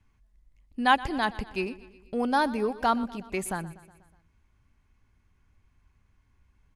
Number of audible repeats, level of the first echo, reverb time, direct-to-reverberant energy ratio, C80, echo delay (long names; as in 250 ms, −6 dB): 4, −18.5 dB, no reverb audible, no reverb audible, no reverb audible, 122 ms